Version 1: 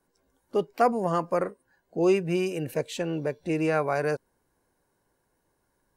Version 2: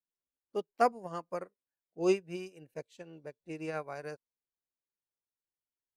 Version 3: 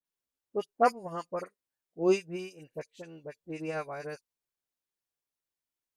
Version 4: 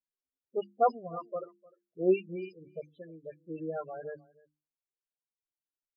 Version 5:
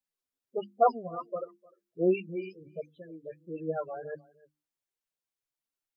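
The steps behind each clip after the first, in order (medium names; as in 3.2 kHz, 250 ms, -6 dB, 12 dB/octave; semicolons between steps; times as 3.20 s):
dynamic bell 5.1 kHz, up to +5 dB, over -47 dBFS, Q 0.82; upward expansion 2.5:1, over -38 dBFS; trim -3.5 dB
phase dispersion highs, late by 51 ms, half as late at 1.9 kHz; trim +2.5 dB
hum notches 50/100/150/200/250/300/350 Hz; loudest bins only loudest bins 8; echo from a far wall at 52 m, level -23 dB
flange 1.4 Hz, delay 3.6 ms, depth 7.2 ms, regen +32%; trim +6 dB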